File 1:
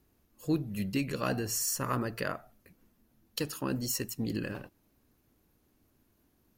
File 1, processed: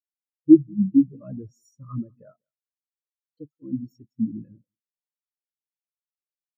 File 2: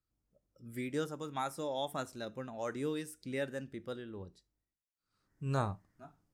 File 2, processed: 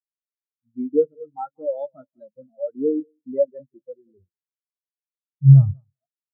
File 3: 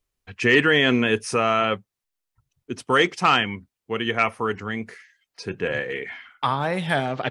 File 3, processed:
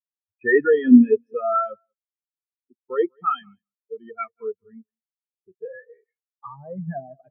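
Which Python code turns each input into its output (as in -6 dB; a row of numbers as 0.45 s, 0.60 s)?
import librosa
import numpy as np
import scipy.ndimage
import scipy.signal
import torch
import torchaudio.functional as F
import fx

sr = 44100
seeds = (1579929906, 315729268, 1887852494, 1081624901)

p1 = x + fx.echo_feedback(x, sr, ms=190, feedback_pct=33, wet_db=-11.5, dry=0)
p2 = fx.leveller(p1, sr, passes=2)
p3 = fx.spectral_expand(p2, sr, expansion=4.0)
y = p3 * 10.0 ** (-2 / 20.0) / np.max(np.abs(p3))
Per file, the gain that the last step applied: +15.5 dB, +18.0 dB, +2.5 dB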